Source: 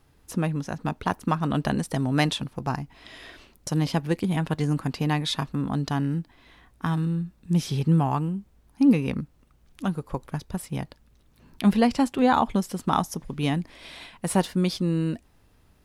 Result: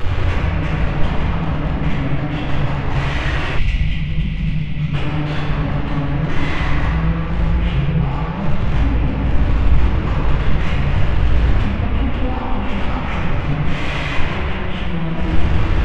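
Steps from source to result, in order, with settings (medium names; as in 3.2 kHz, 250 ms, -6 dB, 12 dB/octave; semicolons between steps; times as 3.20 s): one-bit delta coder 16 kbps, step -24.5 dBFS; compression 12:1, threshold -26 dBFS, peak gain reduction 13.5 dB; saturation -31 dBFS, distortion -11 dB; resonant low shelf 130 Hz +9 dB, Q 1.5; simulated room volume 140 m³, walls hard, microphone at 0.99 m; time-frequency box 3.58–4.94 s, 270–1900 Hz -14 dB; trim +3.5 dB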